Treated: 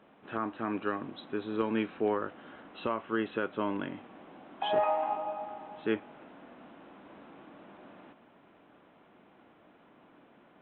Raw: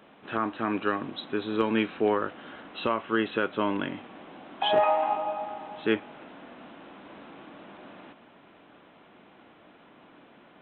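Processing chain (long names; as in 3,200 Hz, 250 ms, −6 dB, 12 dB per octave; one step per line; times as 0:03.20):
high-shelf EQ 3,100 Hz −10 dB
level −4.5 dB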